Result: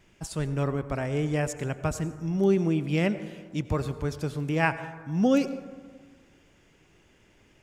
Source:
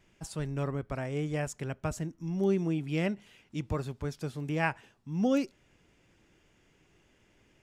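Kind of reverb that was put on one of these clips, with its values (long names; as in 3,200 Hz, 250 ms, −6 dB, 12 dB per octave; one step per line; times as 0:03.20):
dense smooth reverb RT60 1.6 s, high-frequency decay 0.35×, pre-delay 75 ms, DRR 12.5 dB
level +5 dB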